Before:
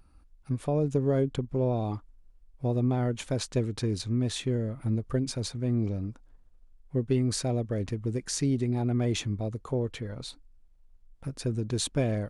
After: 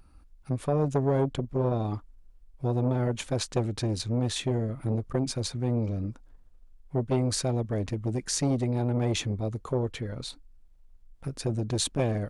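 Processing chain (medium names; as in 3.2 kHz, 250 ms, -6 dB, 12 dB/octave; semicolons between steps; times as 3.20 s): transformer saturation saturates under 490 Hz; trim +3 dB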